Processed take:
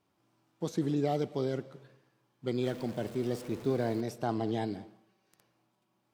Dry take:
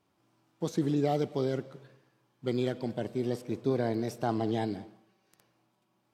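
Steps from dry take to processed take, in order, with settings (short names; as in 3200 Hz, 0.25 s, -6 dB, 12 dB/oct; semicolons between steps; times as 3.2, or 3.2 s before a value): 2.63–4.01 zero-crossing step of -42 dBFS; gain -2 dB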